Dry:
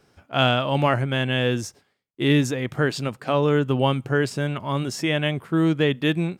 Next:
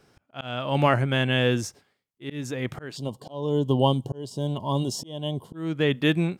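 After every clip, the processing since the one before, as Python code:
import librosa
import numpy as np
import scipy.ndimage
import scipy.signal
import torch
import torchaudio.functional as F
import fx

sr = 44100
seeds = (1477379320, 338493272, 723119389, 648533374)

y = fx.auto_swell(x, sr, attack_ms=423.0)
y = fx.spec_box(y, sr, start_s=2.97, length_s=2.58, low_hz=1100.0, high_hz=2800.0, gain_db=-22)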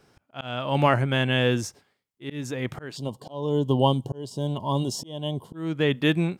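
y = fx.peak_eq(x, sr, hz=930.0, db=2.0, octaves=0.36)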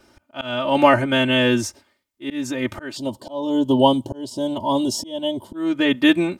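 y = x + 0.95 * np.pad(x, (int(3.3 * sr / 1000.0), 0))[:len(x)]
y = F.gain(torch.from_numpy(y), 3.5).numpy()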